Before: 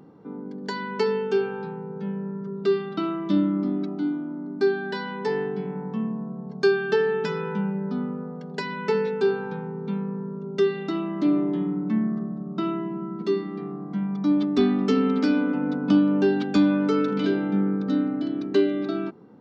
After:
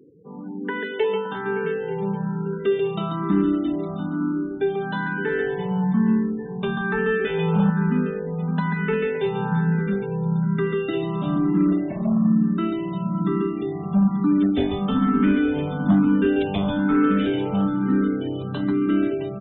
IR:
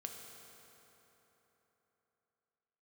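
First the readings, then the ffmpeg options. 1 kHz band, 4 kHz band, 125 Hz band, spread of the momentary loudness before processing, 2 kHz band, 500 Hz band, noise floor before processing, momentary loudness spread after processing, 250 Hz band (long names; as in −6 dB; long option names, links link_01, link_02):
+3.5 dB, 0.0 dB, +8.0 dB, 11 LU, +4.0 dB, 0.0 dB, −36 dBFS, 7 LU, +3.0 dB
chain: -filter_complex "[0:a]asplit=2[link_01][link_02];[link_02]acompressor=threshold=-28dB:ratio=10,volume=-2dB[link_03];[link_01][link_03]amix=inputs=2:normalize=0,asplit=2[link_04][link_05];[link_05]adelay=565.6,volume=-10dB,highshelf=frequency=4000:gain=-12.7[link_06];[link_04][link_06]amix=inputs=2:normalize=0,asubboost=boost=9.5:cutoff=110,asplit=2[link_07][link_08];[link_08]aecho=0:1:140|350|665|1138|1846:0.631|0.398|0.251|0.158|0.1[link_09];[link_07][link_09]amix=inputs=2:normalize=0,asoftclip=type=hard:threshold=-13dB,aresample=8000,aresample=44100,afftfilt=real='re*gte(hypot(re,im),0.0158)':imag='im*gte(hypot(re,im),0.0158)':win_size=1024:overlap=0.75,dynaudnorm=framelen=250:gausssize=3:maxgain=4dB,asplit=2[link_10][link_11];[link_11]afreqshift=1.1[link_12];[link_10][link_12]amix=inputs=2:normalize=1,volume=-2dB"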